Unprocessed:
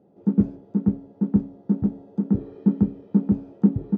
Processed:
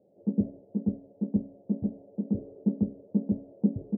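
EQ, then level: four-pole ladder low-pass 640 Hz, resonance 70%; peaking EQ 100 Hz +3.5 dB 0.44 oct; dynamic bell 230 Hz, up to +8 dB, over -45 dBFS, Q 5.5; 0.0 dB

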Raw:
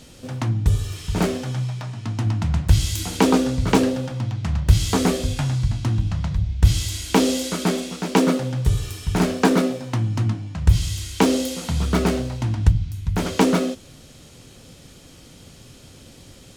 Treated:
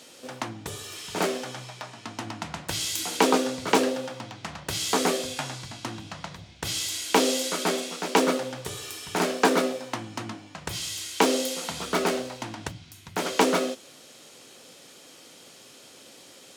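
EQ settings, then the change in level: high-pass 400 Hz 12 dB/octave; 0.0 dB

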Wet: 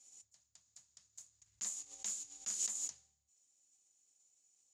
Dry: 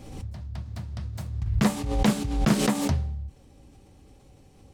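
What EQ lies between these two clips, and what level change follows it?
band-pass filter 6.9 kHz, Q 15; +8.0 dB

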